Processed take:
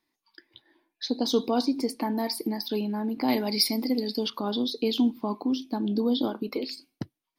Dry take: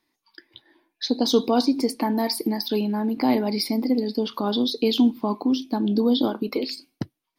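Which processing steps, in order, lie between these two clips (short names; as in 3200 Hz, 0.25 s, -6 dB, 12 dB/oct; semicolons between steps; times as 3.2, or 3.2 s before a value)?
3.28–4.3 high shelf 2100 Hz +10.5 dB; gain -5 dB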